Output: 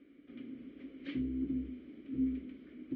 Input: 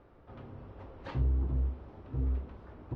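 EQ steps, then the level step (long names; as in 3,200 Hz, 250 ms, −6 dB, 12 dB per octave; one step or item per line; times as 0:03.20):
formant filter i
parametric band 99 Hz −14.5 dB 0.73 octaves
+13.5 dB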